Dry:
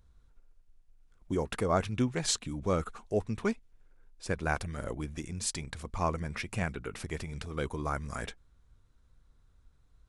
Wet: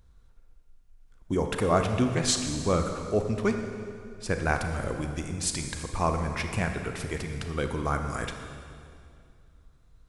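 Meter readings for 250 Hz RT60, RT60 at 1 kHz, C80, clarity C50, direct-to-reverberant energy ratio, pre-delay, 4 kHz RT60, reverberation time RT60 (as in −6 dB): 2.7 s, 2.2 s, 7.0 dB, 6.0 dB, 5.0 dB, 28 ms, 2.1 s, 2.3 s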